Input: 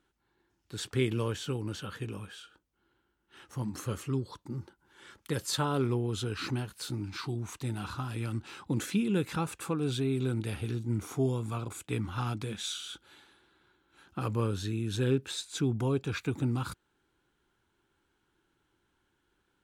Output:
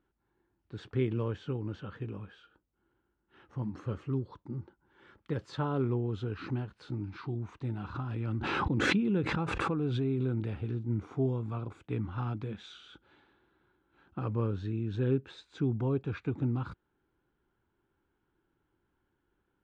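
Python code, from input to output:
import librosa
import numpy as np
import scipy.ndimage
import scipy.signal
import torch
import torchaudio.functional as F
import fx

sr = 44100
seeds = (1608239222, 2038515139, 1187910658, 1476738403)

y = fx.spacing_loss(x, sr, db_at_10k=37)
y = fx.pre_swell(y, sr, db_per_s=20.0, at=(7.94, 10.51), fade=0.02)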